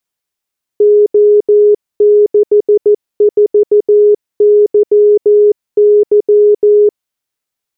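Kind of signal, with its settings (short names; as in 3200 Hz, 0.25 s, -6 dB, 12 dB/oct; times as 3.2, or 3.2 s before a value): Morse "O64YY" 14 wpm 416 Hz -3.5 dBFS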